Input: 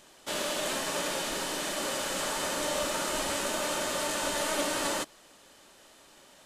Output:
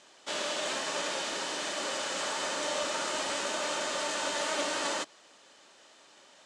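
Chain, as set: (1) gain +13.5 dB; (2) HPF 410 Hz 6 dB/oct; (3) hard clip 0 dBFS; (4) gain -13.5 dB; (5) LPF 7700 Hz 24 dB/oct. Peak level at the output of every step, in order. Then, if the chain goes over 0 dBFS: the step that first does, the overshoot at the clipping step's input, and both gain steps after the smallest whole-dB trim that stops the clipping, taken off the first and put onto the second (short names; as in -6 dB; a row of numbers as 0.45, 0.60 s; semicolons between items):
-4.5, -5.0, -5.0, -18.5, -19.0 dBFS; no overload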